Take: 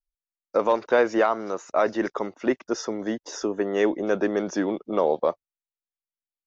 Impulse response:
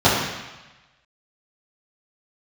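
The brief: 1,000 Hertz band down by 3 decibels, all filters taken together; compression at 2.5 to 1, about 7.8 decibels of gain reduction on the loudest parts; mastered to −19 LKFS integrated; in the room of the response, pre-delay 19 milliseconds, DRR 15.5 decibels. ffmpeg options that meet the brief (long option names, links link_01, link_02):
-filter_complex "[0:a]equalizer=frequency=1000:width_type=o:gain=-4,acompressor=threshold=-29dB:ratio=2.5,asplit=2[link_01][link_02];[1:a]atrim=start_sample=2205,adelay=19[link_03];[link_02][link_03]afir=irnorm=-1:irlink=0,volume=-39.5dB[link_04];[link_01][link_04]amix=inputs=2:normalize=0,volume=13dB"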